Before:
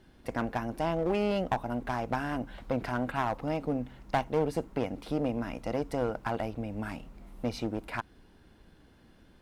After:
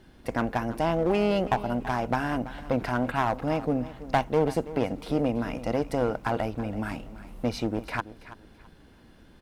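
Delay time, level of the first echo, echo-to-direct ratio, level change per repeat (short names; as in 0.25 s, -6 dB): 0.331 s, -15.5 dB, -15.0 dB, -11.5 dB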